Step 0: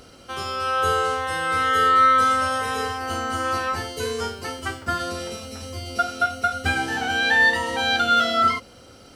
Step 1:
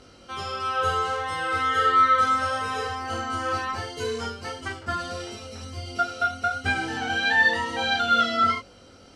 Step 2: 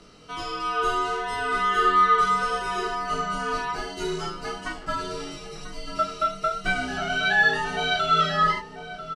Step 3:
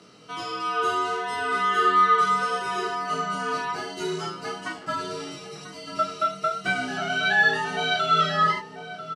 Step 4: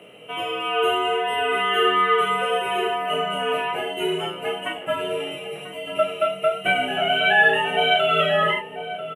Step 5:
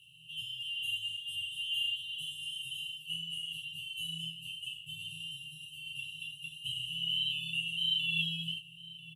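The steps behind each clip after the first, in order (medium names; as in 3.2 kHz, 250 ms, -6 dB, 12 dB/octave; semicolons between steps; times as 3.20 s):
low-pass 7.5 kHz 12 dB/octave; chorus 1.5 Hz, delay 20 ms, depth 2.1 ms
echo from a far wall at 170 m, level -10 dB; frequency shift -69 Hz
high-pass 110 Hz 24 dB/octave
FFT filter 290 Hz 0 dB, 570 Hz +13 dB, 1.3 kHz -3 dB, 2.9 kHz +14 dB, 4.7 kHz -29 dB, 11 kHz +13 dB
de-hum 49.47 Hz, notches 37; FFT band-reject 170–2600 Hz; trim -6 dB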